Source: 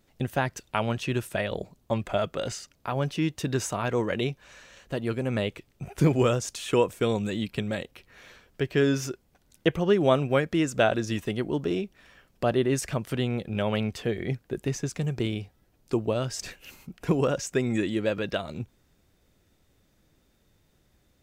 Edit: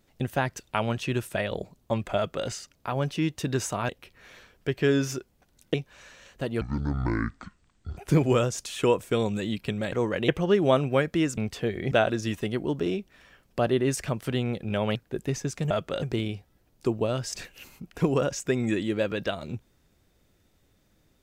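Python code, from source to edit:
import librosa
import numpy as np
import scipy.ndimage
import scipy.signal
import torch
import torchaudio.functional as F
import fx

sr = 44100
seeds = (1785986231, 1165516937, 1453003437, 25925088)

y = fx.edit(x, sr, fx.duplicate(start_s=2.16, length_s=0.32, to_s=15.09),
    fx.swap(start_s=3.89, length_s=0.36, other_s=7.82, other_length_s=1.85),
    fx.speed_span(start_s=5.12, length_s=0.75, speed=0.55),
    fx.move(start_s=13.8, length_s=0.54, to_s=10.76), tone=tone)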